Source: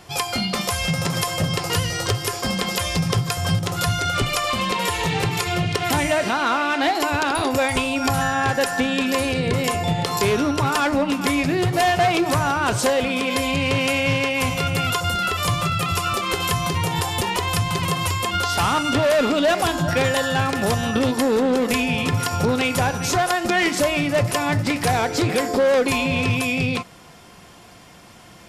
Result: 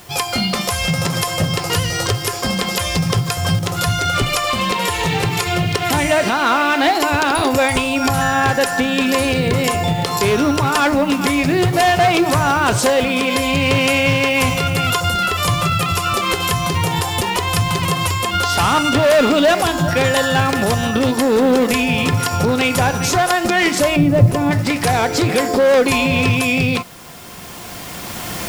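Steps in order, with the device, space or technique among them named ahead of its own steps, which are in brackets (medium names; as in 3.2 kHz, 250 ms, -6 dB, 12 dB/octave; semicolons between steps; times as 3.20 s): 23.96–24.51 s: tilt shelf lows +10 dB, about 650 Hz; cheap recorder with automatic gain (white noise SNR 28 dB; recorder AGC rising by 8.9 dB/s); trim +3 dB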